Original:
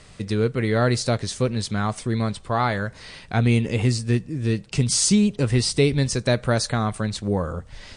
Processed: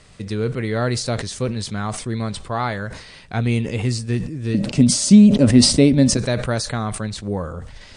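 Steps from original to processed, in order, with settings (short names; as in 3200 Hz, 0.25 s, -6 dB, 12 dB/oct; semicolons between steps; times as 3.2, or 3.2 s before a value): 4.54–6.17 small resonant body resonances 250/580 Hz, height 16 dB, ringing for 40 ms; sustainer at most 77 dB/s; gain -1.5 dB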